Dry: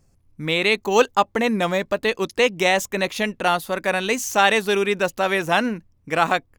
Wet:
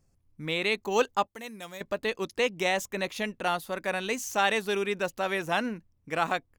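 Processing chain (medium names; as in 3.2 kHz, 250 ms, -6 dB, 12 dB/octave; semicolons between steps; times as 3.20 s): 1.27–1.81 s: pre-emphasis filter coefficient 0.8; trim -8.5 dB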